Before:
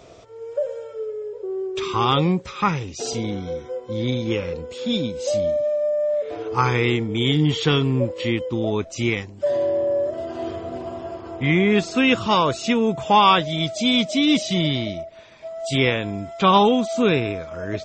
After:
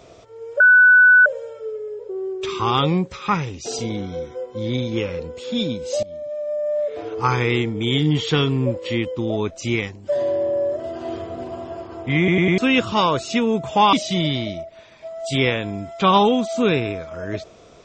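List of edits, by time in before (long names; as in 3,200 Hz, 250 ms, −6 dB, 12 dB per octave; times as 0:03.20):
0:00.60: insert tone 1,490 Hz −7.5 dBFS 0.66 s
0:05.37–0:06.12: fade in, from −19.5 dB
0:11.52: stutter in place 0.10 s, 4 plays
0:13.27–0:14.33: remove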